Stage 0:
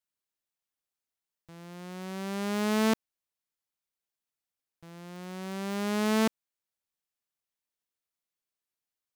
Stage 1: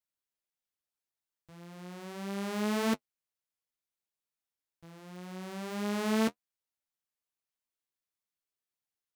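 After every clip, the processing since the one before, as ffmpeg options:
ffmpeg -i in.wav -af "flanger=delay=9.4:depth=5:regen=-32:speed=1.7:shape=triangular" out.wav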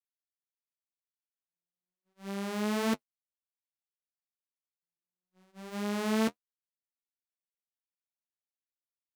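ffmpeg -i in.wav -af "agate=range=-58dB:threshold=-38dB:ratio=16:detection=peak" out.wav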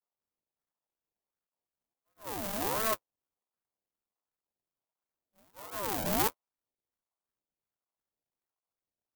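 ffmpeg -i in.wav -af "acrusher=samples=39:mix=1:aa=0.000001:lfo=1:lforange=39:lforate=2.7,aemphasis=mode=production:type=50fm,aeval=exprs='val(0)*sin(2*PI*640*n/s+640*0.4/1.4*sin(2*PI*1.4*n/s))':channel_layout=same" out.wav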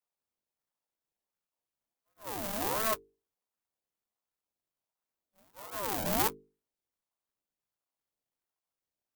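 ffmpeg -i in.wav -af "bandreject=frequency=50:width_type=h:width=6,bandreject=frequency=100:width_type=h:width=6,bandreject=frequency=150:width_type=h:width=6,bandreject=frequency=200:width_type=h:width=6,bandreject=frequency=250:width_type=h:width=6,bandreject=frequency=300:width_type=h:width=6,bandreject=frequency=350:width_type=h:width=6,bandreject=frequency=400:width_type=h:width=6,bandreject=frequency=450:width_type=h:width=6" out.wav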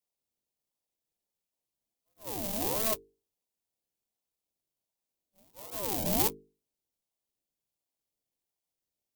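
ffmpeg -i in.wav -af "equalizer=frequency=1400:width_type=o:width=1.2:gain=-13.5,volume=3dB" out.wav

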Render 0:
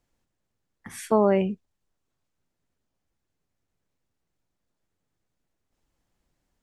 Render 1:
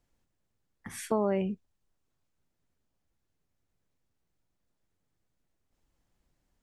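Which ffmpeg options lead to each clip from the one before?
ffmpeg -i in.wav -af "lowshelf=frequency=150:gain=3.5,acompressor=threshold=-27dB:ratio=2,volume=-2dB" out.wav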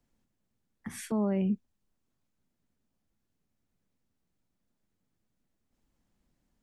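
ffmpeg -i in.wav -filter_complex "[0:a]equalizer=frequency=220:width=2:gain=8.5,acrossover=split=180[link_01][link_02];[link_02]alimiter=limit=-23dB:level=0:latency=1:release=125[link_03];[link_01][link_03]amix=inputs=2:normalize=0,volume=-1.5dB" out.wav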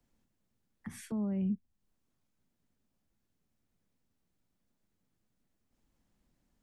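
ffmpeg -i in.wav -filter_complex "[0:a]acrossover=split=210[link_01][link_02];[link_02]acompressor=threshold=-53dB:ratio=2[link_03];[link_01][link_03]amix=inputs=2:normalize=0" out.wav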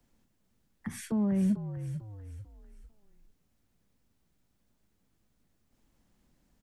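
ffmpeg -i in.wav -filter_complex "[0:a]asplit=2[link_01][link_02];[link_02]volume=30dB,asoftclip=hard,volume=-30dB,volume=-6.5dB[link_03];[link_01][link_03]amix=inputs=2:normalize=0,asplit=5[link_04][link_05][link_06][link_07][link_08];[link_05]adelay=446,afreqshift=-53,volume=-10dB[link_09];[link_06]adelay=892,afreqshift=-106,volume=-17.5dB[link_10];[link_07]adelay=1338,afreqshift=-159,volume=-25.1dB[link_11];[link_08]adelay=1784,afreqshift=-212,volume=-32.6dB[link_12];[link_04][link_09][link_10][link_11][link_12]amix=inputs=5:normalize=0,volume=2.5dB" out.wav

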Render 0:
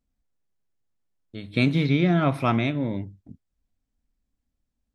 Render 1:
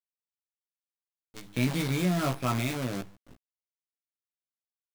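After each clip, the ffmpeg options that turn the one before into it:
ffmpeg -i in.wav -filter_complex "[0:a]acrusher=bits=5:dc=4:mix=0:aa=0.000001,asplit=2[link_01][link_02];[link_02]adelay=16,volume=-3.5dB[link_03];[link_01][link_03]amix=inputs=2:normalize=0,asoftclip=type=tanh:threshold=-8dB,volume=-7.5dB" out.wav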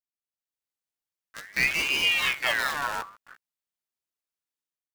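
ffmpeg -i in.wav -af "dynaudnorm=framelen=180:gausssize=5:maxgain=11.5dB,aeval=exprs='val(0)*sin(2*PI*1900*n/s+1900*0.4/0.5*sin(2*PI*0.5*n/s))':channel_layout=same,volume=-6dB" out.wav

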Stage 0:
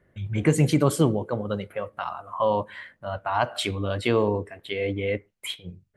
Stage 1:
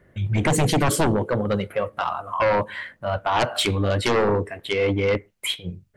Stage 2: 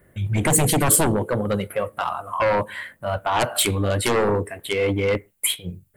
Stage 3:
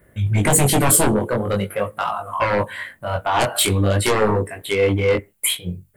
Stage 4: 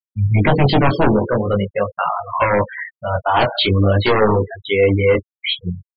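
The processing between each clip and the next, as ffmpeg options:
ffmpeg -i in.wav -af "aeval=exprs='0.422*sin(PI/2*3.55*val(0)/0.422)':channel_layout=same,volume=-7.5dB" out.wav
ffmpeg -i in.wav -af "aexciter=amount=3.1:drive=9:freq=7900" out.wav
ffmpeg -i in.wav -af "flanger=delay=18.5:depth=4.6:speed=0.46,volume=5.5dB" out.wav
ffmpeg -i in.wav -af "aresample=11025,aresample=44100,afftfilt=real='re*gte(hypot(re,im),0.0708)':imag='im*gte(hypot(re,im),0.0708)':win_size=1024:overlap=0.75,volume=3.5dB" out.wav

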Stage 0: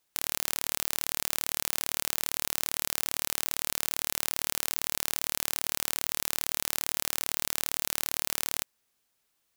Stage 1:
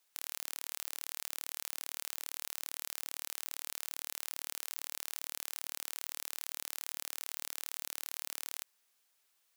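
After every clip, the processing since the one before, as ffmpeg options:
ffmpeg -i in.wav -af "highpass=frequency=790:poles=1,alimiter=limit=-13.5dB:level=0:latency=1:release=43,volume=1dB" out.wav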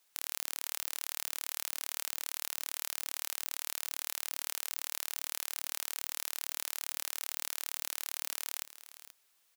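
ffmpeg -i in.wav -af "aecho=1:1:482:0.188,volume=3.5dB" out.wav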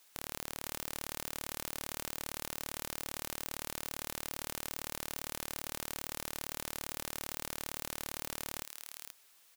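ffmpeg -i in.wav -af "asoftclip=type=tanh:threshold=-24dB,volume=7.5dB" out.wav

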